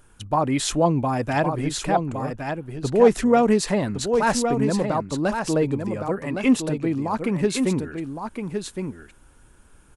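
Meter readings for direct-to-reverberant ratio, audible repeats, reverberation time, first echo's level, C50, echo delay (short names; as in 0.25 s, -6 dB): none, 1, none, -6.5 dB, none, 1.113 s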